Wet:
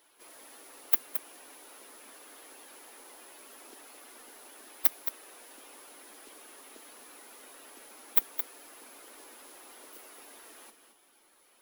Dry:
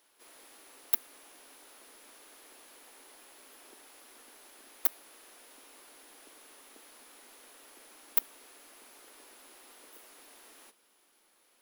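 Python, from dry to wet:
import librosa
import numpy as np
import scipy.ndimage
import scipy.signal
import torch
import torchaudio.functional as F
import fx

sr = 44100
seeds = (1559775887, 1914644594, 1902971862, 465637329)

y = fx.spec_quant(x, sr, step_db=15)
y = y + 10.0 ** (-9.5 / 20.0) * np.pad(y, (int(219 * sr / 1000.0), 0))[:len(y)]
y = F.gain(torch.from_numpy(y), 4.0).numpy()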